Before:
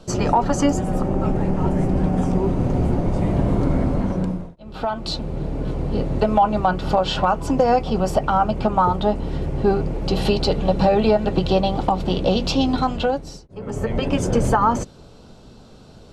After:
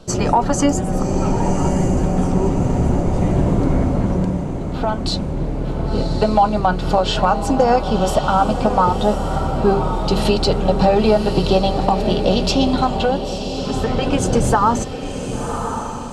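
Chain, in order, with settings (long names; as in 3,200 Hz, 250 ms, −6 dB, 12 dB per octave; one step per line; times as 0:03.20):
dynamic equaliser 8,600 Hz, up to +6 dB, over −47 dBFS, Q 1
feedback delay with all-pass diffusion 1,081 ms, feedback 43%, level −7.5 dB
level +2 dB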